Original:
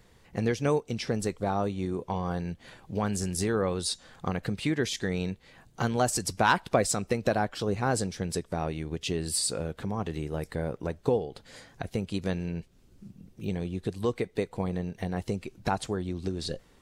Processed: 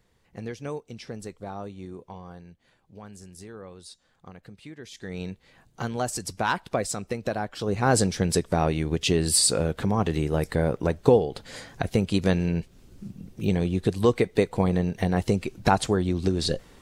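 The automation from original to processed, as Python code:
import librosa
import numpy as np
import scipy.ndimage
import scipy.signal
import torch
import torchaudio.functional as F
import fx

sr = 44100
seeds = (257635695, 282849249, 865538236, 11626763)

y = fx.gain(x, sr, db=fx.line((1.92, -8.0), (2.59, -15.0), (4.81, -15.0), (5.21, -2.5), (7.47, -2.5), (7.99, 8.0)))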